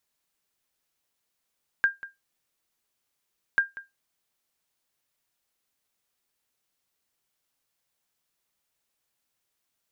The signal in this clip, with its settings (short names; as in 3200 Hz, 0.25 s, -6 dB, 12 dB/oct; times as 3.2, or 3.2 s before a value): sonar ping 1600 Hz, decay 0.18 s, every 1.74 s, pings 2, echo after 0.19 s, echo -17.5 dB -13 dBFS